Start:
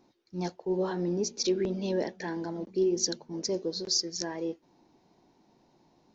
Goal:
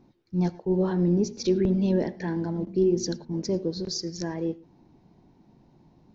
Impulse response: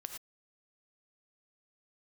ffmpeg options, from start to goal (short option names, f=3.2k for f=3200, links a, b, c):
-filter_complex "[0:a]bass=f=250:g=14,treble=f=4k:g=-6,asplit=2[a][b];[1:a]atrim=start_sample=2205,highshelf=f=4.4k:g=-9[c];[b][c]afir=irnorm=-1:irlink=0,volume=-7dB[d];[a][d]amix=inputs=2:normalize=0,volume=-1.5dB"